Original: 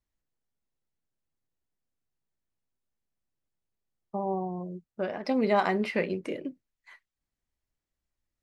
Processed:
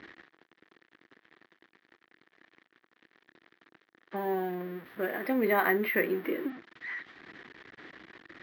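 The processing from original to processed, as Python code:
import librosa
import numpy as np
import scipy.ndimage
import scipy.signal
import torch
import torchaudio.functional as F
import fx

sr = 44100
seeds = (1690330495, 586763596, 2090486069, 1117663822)

y = x + 0.5 * 10.0 ** (-36.5 / 20.0) * np.sign(x)
y = fx.cabinet(y, sr, low_hz=280.0, low_slope=12, high_hz=3200.0, hz=(330.0, 590.0, 880.0, 1800.0, 2700.0), db=(6, -7, -5, 8, -5))
y = fx.resample_bad(y, sr, factor=3, down='none', up='hold', at=(4.16, 6.5))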